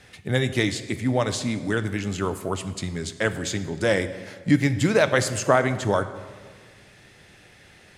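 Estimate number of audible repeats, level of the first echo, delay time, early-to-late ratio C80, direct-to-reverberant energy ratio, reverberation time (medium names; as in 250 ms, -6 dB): no echo, no echo, no echo, 14.0 dB, 10.5 dB, 1.6 s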